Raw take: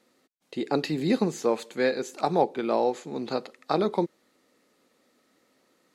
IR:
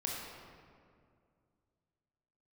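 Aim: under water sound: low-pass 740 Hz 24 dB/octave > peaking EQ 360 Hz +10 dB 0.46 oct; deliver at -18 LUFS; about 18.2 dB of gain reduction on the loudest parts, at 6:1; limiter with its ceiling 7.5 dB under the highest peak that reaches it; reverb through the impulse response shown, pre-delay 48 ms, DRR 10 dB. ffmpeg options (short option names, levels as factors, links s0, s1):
-filter_complex "[0:a]acompressor=threshold=0.0112:ratio=6,alimiter=level_in=2.66:limit=0.0631:level=0:latency=1,volume=0.376,asplit=2[s0][s1];[1:a]atrim=start_sample=2205,adelay=48[s2];[s1][s2]afir=irnorm=-1:irlink=0,volume=0.237[s3];[s0][s3]amix=inputs=2:normalize=0,lowpass=f=740:w=0.5412,lowpass=f=740:w=1.3066,equalizer=f=360:t=o:w=0.46:g=10,volume=12.6"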